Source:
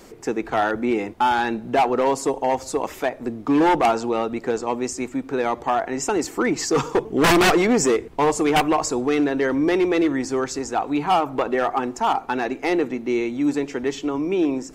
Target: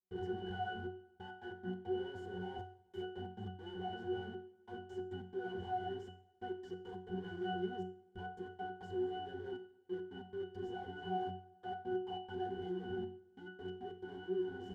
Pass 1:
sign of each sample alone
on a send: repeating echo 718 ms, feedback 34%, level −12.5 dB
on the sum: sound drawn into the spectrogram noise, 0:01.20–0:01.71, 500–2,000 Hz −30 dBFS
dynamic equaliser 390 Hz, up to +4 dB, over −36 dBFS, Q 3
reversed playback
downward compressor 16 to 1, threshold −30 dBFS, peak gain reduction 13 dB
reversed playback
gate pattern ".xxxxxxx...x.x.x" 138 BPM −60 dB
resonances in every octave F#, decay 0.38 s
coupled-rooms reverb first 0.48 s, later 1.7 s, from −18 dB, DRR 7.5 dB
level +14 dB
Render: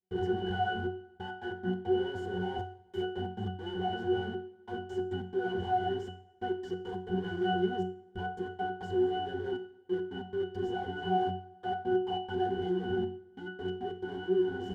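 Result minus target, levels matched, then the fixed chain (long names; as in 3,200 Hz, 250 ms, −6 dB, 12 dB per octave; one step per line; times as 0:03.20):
downward compressor: peak gain reduction −9.5 dB
sign of each sample alone
on a send: repeating echo 718 ms, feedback 34%, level −12.5 dB
on the sum: sound drawn into the spectrogram noise, 0:01.20–0:01.71, 500–2,000 Hz −30 dBFS
dynamic equaliser 390 Hz, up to +4 dB, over −36 dBFS, Q 3
reversed playback
downward compressor 16 to 1, threshold −40 dBFS, peak gain reduction 22.5 dB
reversed playback
gate pattern ".xxxxxxx...x.x.x" 138 BPM −60 dB
resonances in every octave F#, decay 0.38 s
coupled-rooms reverb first 0.48 s, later 1.7 s, from −18 dB, DRR 7.5 dB
level +14 dB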